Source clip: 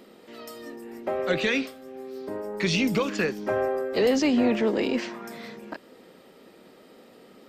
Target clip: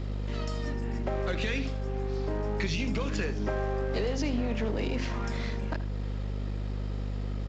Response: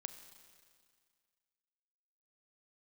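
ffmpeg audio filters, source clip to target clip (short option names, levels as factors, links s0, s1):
-filter_complex "[0:a]bandreject=f=87.56:t=h:w=4,bandreject=f=175.12:t=h:w=4,bandreject=f=262.68:t=h:w=4,bandreject=f=350.24:t=h:w=4,bandreject=f=437.8:t=h:w=4,bandreject=f=525.36:t=h:w=4,bandreject=f=612.92:t=h:w=4,bandreject=f=700.48:t=h:w=4,acompressor=threshold=0.0282:ratio=6,asplit=2[s0][s1];[s1]alimiter=level_in=3.35:limit=0.0631:level=0:latency=1:release=332,volume=0.299,volume=1[s2];[s0][s2]amix=inputs=2:normalize=0,aeval=exprs='val(0)+0.0316*(sin(2*PI*50*n/s)+sin(2*PI*2*50*n/s)/2+sin(2*PI*3*50*n/s)/3+sin(2*PI*4*50*n/s)/4+sin(2*PI*5*50*n/s)/5)':c=same,aeval=exprs='sgn(val(0))*max(abs(val(0))-0.00708,0)':c=same,asplit=2[s3][s4];[s4]aecho=0:1:78:0.188[s5];[s3][s5]amix=inputs=2:normalize=0,aresample=16000,aresample=44100"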